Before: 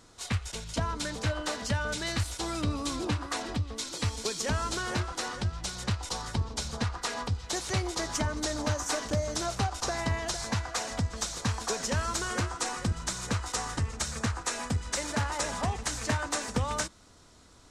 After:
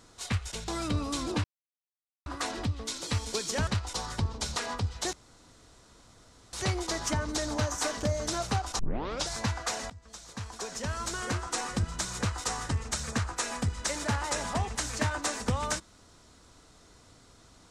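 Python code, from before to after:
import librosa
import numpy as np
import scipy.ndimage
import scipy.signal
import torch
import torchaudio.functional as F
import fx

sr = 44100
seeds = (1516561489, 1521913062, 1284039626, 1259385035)

y = fx.edit(x, sr, fx.cut(start_s=0.68, length_s=1.73),
    fx.insert_silence(at_s=3.17, length_s=0.82),
    fx.cut(start_s=4.58, length_s=1.25),
    fx.cut(start_s=6.72, length_s=0.32),
    fx.insert_room_tone(at_s=7.61, length_s=1.4),
    fx.tape_start(start_s=9.87, length_s=0.49),
    fx.fade_in_from(start_s=10.98, length_s=1.71, floor_db=-22.5), tone=tone)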